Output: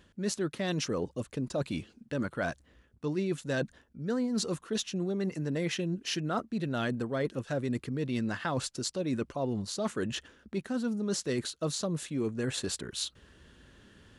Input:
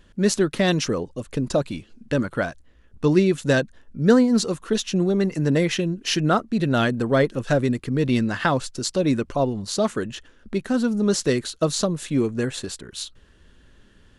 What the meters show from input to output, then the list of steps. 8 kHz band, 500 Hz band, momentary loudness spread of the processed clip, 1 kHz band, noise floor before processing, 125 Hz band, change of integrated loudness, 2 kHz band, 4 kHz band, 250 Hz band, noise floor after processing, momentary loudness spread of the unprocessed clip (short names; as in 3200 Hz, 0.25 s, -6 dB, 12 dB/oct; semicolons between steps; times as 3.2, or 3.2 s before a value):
-7.5 dB, -11.5 dB, 5 LU, -11.5 dB, -55 dBFS, -10.5 dB, -11.0 dB, -10.5 dB, -8.0 dB, -11.0 dB, -66 dBFS, 11 LU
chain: reverse; compressor 5:1, threshold -30 dBFS, peak gain reduction 17.5 dB; reverse; HPF 63 Hz